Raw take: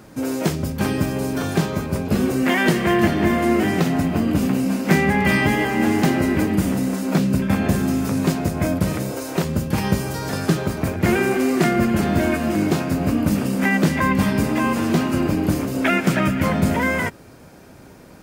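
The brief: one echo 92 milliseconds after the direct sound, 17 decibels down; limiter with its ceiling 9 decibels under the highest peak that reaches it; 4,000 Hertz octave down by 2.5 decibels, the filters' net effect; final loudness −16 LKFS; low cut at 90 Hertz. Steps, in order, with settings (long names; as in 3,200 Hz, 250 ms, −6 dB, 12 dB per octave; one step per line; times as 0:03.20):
high-pass filter 90 Hz
parametric band 4,000 Hz −3.5 dB
brickwall limiter −12.5 dBFS
single-tap delay 92 ms −17 dB
level +6 dB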